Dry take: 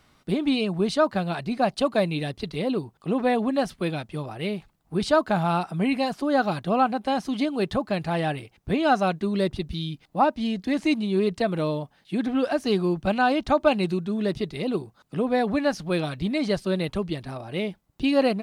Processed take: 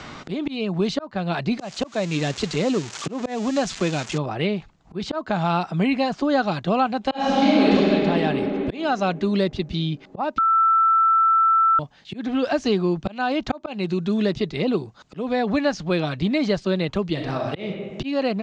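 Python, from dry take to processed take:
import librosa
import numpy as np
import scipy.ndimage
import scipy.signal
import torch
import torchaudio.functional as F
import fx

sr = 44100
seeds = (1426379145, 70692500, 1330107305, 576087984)

y = fx.crossing_spikes(x, sr, level_db=-20.0, at=(1.59, 4.18))
y = fx.reverb_throw(y, sr, start_s=7.07, length_s=0.65, rt60_s=2.8, drr_db=-12.0)
y = fx.reverb_throw(y, sr, start_s=17.12, length_s=0.49, rt60_s=0.87, drr_db=2.0)
y = fx.edit(y, sr, fx.bleep(start_s=10.38, length_s=1.41, hz=1330.0, db=-16.0), tone=tone)
y = scipy.signal.sosfilt(scipy.signal.ellip(4, 1.0, 60, 7100.0, 'lowpass', fs=sr, output='sos'), y)
y = fx.auto_swell(y, sr, attack_ms=454.0)
y = fx.band_squash(y, sr, depth_pct=70)
y = F.gain(torch.from_numpy(y), 3.5).numpy()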